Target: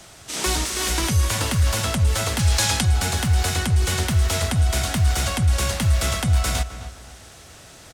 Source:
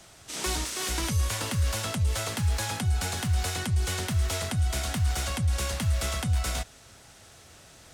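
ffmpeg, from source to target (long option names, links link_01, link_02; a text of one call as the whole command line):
ffmpeg -i in.wav -filter_complex "[0:a]asettb=1/sr,asplit=3[link_01][link_02][link_03];[link_01]atrim=end=2.394[link_04];[link_02]atrim=start=2.39:end=2.85,asetpts=PTS-STARTPTS,afade=type=in:duration=0.004:curve=qsin,afade=type=out:start_time=0.456:duration=0.004:curve=qsin,equalizer=frequency=5200:width_type=o:width=2.3:gain=7[link_05];[link_03]atrim=start=2.846[link_06];[link_04][link_05]acrossfade=duration=0.004:curve1=hsin:curve2=qsin[link_07];[link_07][link_06]acrossfade=duration=0.004:curve1=qsin:curve2=hsin,asplit=2[link_08][link_09];[link_09]adelay=259,lowpass=frequency=2000:poles=1,volume=-11.5dB,asplit=2[link_10][link_11];[link_11]adelay=259,lowpass=frequency=2000:poles=1,volume=0.34,asplit=2[link_12][link_13];[link_13]adelay=259,lowpass=frequency=2000:poles=1,volume=0.34,asplit=2[link_14][link_15];[link_15]adelay=259,lowpass=frequency=2000:poles=1,volume=0.34[link_16];[link_08][link_10][link_12][link_14][link_16]amix=inputs=5:normalize=0,volume=7dB" out.wav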